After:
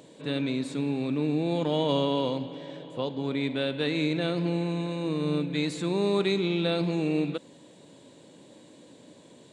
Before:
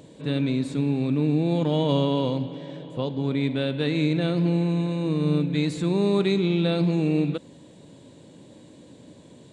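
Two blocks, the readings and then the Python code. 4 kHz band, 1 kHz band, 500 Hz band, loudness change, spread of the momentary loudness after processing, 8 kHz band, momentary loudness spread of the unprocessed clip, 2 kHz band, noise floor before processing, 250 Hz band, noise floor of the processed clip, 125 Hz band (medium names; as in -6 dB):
0.0 dB, -0.5 dB, -2.0 dB, -4.0 dB, 8 LU, no reading, 7 LU, 0.0 dB, -50 dBFS, -4.5 dB, -53 dBFS, -7.5 dB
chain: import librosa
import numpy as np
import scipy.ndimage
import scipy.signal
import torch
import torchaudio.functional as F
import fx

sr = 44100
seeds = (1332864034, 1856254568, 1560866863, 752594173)

y = fx.highpass(x, sr, hz=350.0, slope=6)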